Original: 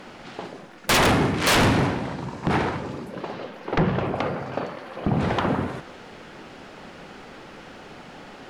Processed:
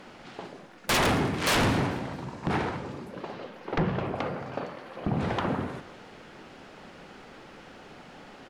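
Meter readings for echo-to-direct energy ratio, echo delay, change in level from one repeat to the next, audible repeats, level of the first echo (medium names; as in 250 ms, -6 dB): -20.0 dB, 222 ms, -8.0 dB, 2, -21.0 dB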